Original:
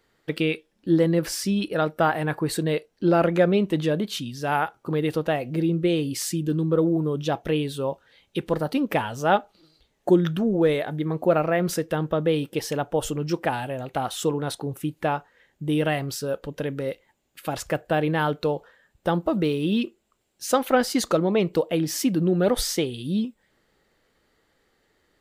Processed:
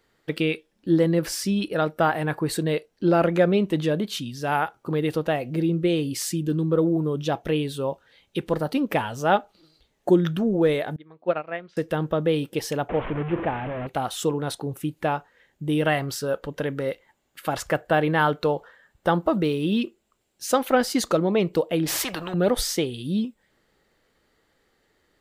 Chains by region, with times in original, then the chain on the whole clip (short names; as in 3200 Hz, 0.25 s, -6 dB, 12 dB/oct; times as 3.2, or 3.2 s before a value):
10.96–11.77 LPF 3700 Hz 24 dB/oct + tilt +2.5 dB/oct + upward expander 2.5:1, over -31 dBFS
12.89–13.87 delta modulation 16 kbps, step -23 dBFS + LPF 1200 Hz 6 dB/oct
15.85–19.38 bell 1300 Hz +5 dB 2 oct + notch 2500 Hz, Q 19
21.86–22.34 bell 14000 Hz -13 dB 2.7 oct + spectral compressor 4:1
whole clip: dry